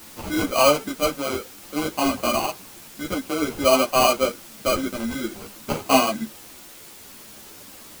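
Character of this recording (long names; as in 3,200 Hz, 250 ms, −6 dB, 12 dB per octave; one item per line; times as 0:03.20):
aliases and images of a low sample rate 1,800 Hz, jitter 0%
tremolo triangle 0.55 Hz, depth 45%
a quantiser's noise floor 8 bits, dither triangular
a shimmering, thickened sound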